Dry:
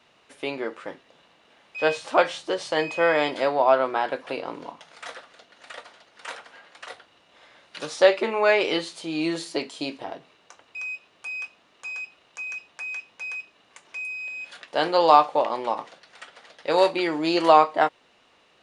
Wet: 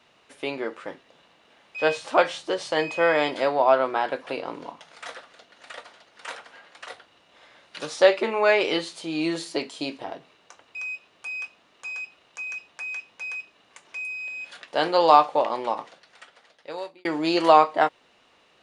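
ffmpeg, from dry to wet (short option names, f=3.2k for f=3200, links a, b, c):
-filter_complex "[0:a]asplit=2[a][b];[a]atrim=end=17.05,asetpts=PTS-STARTPTS,afade=t=out:st=15.64:d=1.41[c];[b]atrim=start=17.05,asetpts=PTS-STARTPTS,afade=t=in:d=0.004:c=hsin[d];[c][d]concat=n=2:v=0:a=1"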